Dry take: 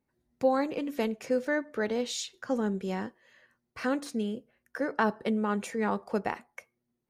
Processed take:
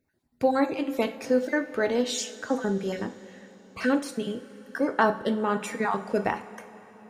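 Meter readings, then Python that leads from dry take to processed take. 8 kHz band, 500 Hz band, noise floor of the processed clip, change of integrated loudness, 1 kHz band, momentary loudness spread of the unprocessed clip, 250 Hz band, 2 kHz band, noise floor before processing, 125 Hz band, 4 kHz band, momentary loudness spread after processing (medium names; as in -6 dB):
+5.0 dB, +4.0 dB, -68 dBFS, +3.5 dB, +4.5 dB, 12 LU, +3.0 dB, +4.5 dB, -82 dBFS, +2.0 dB, +4.0 dB, 14 LU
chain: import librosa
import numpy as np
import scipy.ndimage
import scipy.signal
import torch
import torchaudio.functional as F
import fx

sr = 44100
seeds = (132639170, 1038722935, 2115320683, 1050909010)

y = fx.spec_dropout(x, sr, seeds[0], share_pct=21)
y = fx.rev_double_slope(y, sr, seeds[1], early_s=0.38, late_s=4.5, knee_db=-18, drr_db=6.5)
y = y * 10.0 ** (4.5 / 20.0)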